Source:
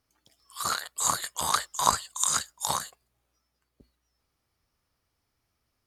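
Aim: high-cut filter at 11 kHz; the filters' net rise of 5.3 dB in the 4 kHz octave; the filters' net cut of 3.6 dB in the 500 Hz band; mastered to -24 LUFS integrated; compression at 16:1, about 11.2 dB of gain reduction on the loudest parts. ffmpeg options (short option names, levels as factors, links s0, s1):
-af "lowpass=11000,equalizer=f=500:t=o:g=-5,equalizer=f=4000:t=o:g=6,acompressor=threshold=0.0355:ratio=16,volume=2.99"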